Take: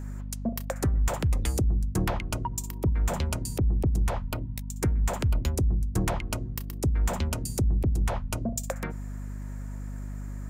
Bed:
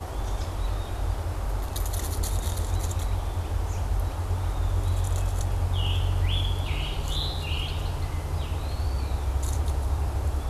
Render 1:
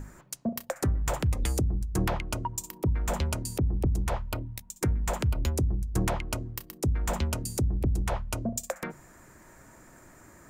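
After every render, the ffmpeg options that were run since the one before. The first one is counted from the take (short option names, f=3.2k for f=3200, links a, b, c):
-af "bandreject=f=50:t=h:w=6,bandreject=f=100:t=h:w=6,bandreject=f=150:t=h:w=6,bandreject=f=200:t=h:w=6,bandreject=f=250:t=h:w=6"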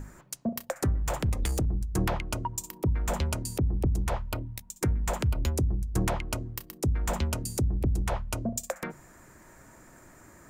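-filter_complex "[0:a]asettb=1/sr,asplit=3[a][b][c];[a]atrim=end=1.004[d];[b]atrim=start=1:end=1.66,asetpts=PTS-STARTPTS,afade=t=in:d=0.004:c=qsin,afade=t=out:st=0.656:d=0.004:c=qsin,aeval=exprs='clip(val(0),-1,0.0531)':c=same[e];[c]atrim=start=1.656[f];[d][e]acrossfade=d=0.004:c1=hsin:c2=qsin[g];[g][f]acrossfade=d=0.004:c1=qsin:c2=hsin"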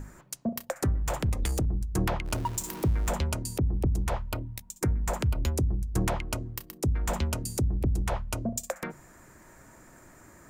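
-filter_complex "[0:a]asettb=1/sr,asplit=3[a][b][c];[a]atrim=end=2.254[d];[b]atrim=start=2.25:end=3.09,asetpts=PTS-STARTPTS,afade=t=in:d=0.004:c=qsin,afade=t=out:st=0.836:d=0.004:c=qsin,aeval=exprs='val(0)+0.5*0.0168*sgn(val(0))':c=same[e];[c]atrim=start=3.086[f];[d][e]acrossfade=d=0.004:c1=hsin:c2=qsin[g];[g][f]acrossfade=d=0.004:c1=qsin:c2=hsin,asettb=1/sr,asplit=3[h][i][j];[h]atrim=end=4.794[k];[i]atrim=start=4.79:end=5.22,asetpts=PTS-STARTPTS,afade=t=in:d=0.004:c=qsin,afade=t=out:st=0.426:d=0.004:c=qsin,equalizer=f=3.2k:t=o:w=0.77:g=-5.5[l];[j]atrim=start=5.216[m];[k][l]acrossfade=d=0.004:c1=hsin:c2=qsin[n];[n][m]acrossfade=d=0.004:c1=qsin:c2=hsin"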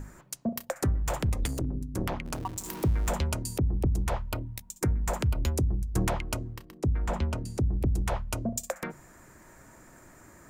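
-filter_complex "[0:a]asettb=1/sr,asplit=3[a][b][c];[a]atrim=end=1.474[d];[b]atrim=start=1.47:end=2.66,asetpts=PTS-STARTPTS,afade=t=in:d=0.004:c=qsin,afade=t=out:st=1.186:d=0.004:c=qsin,tremolo=f=200:d=1[e];[c]atrim=start=2.656[f];[d][e]acrossfade=d=0.004:c1=hsin:c2=qsin[g];[g][f]acrossfade=d=0.004:c1=qsin:c2=hsin,asettb=1/sr,asplit=3[h][i][j];[h]atrim=end=6.544[k];[i]atrim=start=6.54:end=7.73,asetpts=PTS-STARTPTS,afade=t=in:d=0.004:c=qsin,afade=t=out:st=1.186:d=0.004:c=qsin,aemphasis=mode=reproduction:type=75kf[l];[j]atrim=start=7.726[m];[k][l]acrossfade=d=0.004:c1=hsin:c2=qsin[n];[n][m]acrossfade=d=0.004:c1=qsin:c2=hsin"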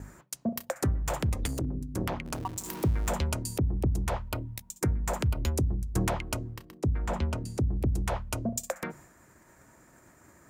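-af "agate=range=-33dB:threshold=-48dB:ratio=3:detection=peak,highpass=47"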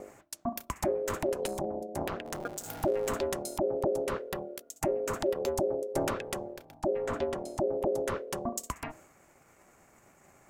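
-af "aeval=exprs='val(0)*sin(2*PI*470*n/s)':c=same"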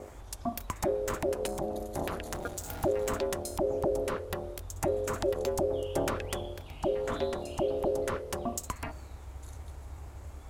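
-filter_complex "[1:a]volume=-17.5dB[a];[0:a][a]amix=inputs=2:normalize=0"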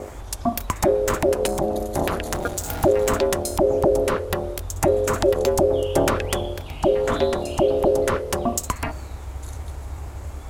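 -af "volume=11dB"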